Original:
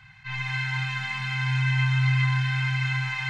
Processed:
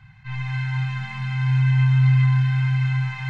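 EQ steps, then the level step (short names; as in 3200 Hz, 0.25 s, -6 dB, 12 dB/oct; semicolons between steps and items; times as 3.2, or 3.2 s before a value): tilt shelf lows +7 dB, about 810 Hz; 0.0 dB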